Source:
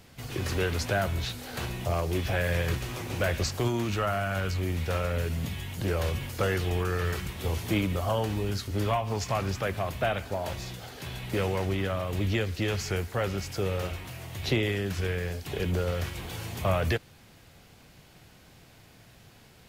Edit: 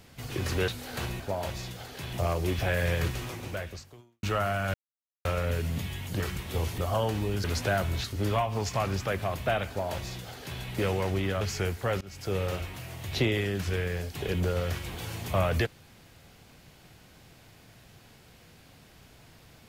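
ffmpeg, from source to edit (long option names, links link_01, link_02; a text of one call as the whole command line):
ffmpeg -i in.wav -filter_complex "[0:a]asplit=13[link_01][link_02][link_03][link_04][link_05][link_06][link_07][link_08][link_09][link_10][link_11][link_12][link_13];[link_01]atrim=end=0.682[link_14];[link_02]atrim=start=1.278:end=1.802[link_15];[link_03]atrim=start=10.228:end=11.162[link_16];[link_04]atrim=start=1.798:end=3.9,asetpts=PTS-STARTPTS,afade=type=out:start_time=1.072:duration=1.03:curve=qua[link_17];[link_05]atrim=start=3.9:end=4.41,asetpts=PTS-STARTPTS,afade=type=in:duration=0.004:curve=hsin,afade=type=out:start_time=0.506:duration=0.004:curve=hsin[link_18];[link_06]atrim=start=4.41:end=4.92,asetpts=PTS-STARTPTS,volume=0[link_19];[link_07]atrim=start=4.92:end=5.872,asetpts=PTS-STARTPTS,afade=type=in:duration=0.004:curve=hsin[link_20];[link_08]atrim=start=7.098:end=7.682[link_21];[link_09]atrim=start=7.928:end=8.592[link_22];[link_10]atrim=start=0.678:end=1.282[link_23];[link_11]atrim=start=8.588:end=11.962[link_24];[link_12]atrim=start=12.718:end=13.32,asetpts=PTS-STARTPTS,afade=type=out:start_time=0.598:duration=0.004:curve=hsin:silence=0.0707946[link_25];[link_13]atrim=start=13.32,asetpts=PTS-STARTPTS,afade=type=in:duration=0.35:silence=0.0707946[link_26];[link_14][link_15]acrossfade=duration=0.004:curve1=hsin:curve2=hsin[link_27];[link_27][link_16]acrossfade=duration=0.004:curve1=hsin:curve2=hsin[link_28];[link_17][link_18][link_19][link_20]concat=n=4:v=0:a=1[link_29];[link_28][link_29]acrossfade=duration=0.004:curve1=hsin:curve2=hsin[link_30];[link_30][link_21]acrossfade=duration=0.004:curve1=hsin:curve2=hsin[link_31];[link_31][link_22]acrossfade=duration=0.004:curve1=hsin:curve2=hsin[link_32];[link_32][link_23]acrossfade=duration=0.004:curve1=hsin:curve2=hsin[link_33];[link_33][link_24]acrossfade=duration=0.004:curve1=hsin:curve2=hsin[link_34];[link_25][link_26]concat=n=2:v=0:a=1[link_35];[link_34][link_35]acrossfade=duration=0.004:curve1=hsin:curve2=hsin" out.wav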